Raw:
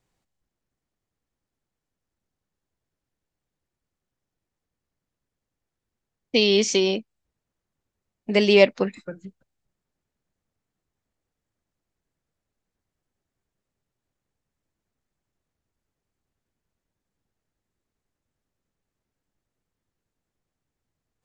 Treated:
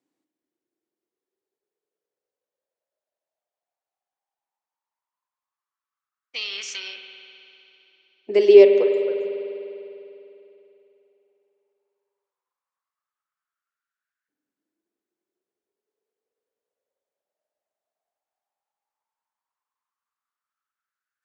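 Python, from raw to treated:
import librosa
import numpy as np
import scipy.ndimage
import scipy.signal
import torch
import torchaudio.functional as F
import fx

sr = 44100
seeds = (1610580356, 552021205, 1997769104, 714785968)

y = fx.filter_lfo_highpass(x, sr, shape='saw_up', hz=0.14, low_hz=280.0, high_hz=1600.0, q=7.9)
y = fx.rev_spring(y, sr, rt60_s=3.1, pass_ms=(50,), chirp_ms=25, drr_db=5.0)
y = y * librosa.db_to_amplitude(-9.0)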